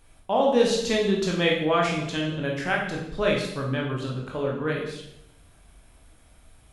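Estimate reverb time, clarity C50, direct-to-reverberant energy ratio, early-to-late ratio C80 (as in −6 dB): 0.80 s, 3.5 dB, −2.0 dB, 7.0 dB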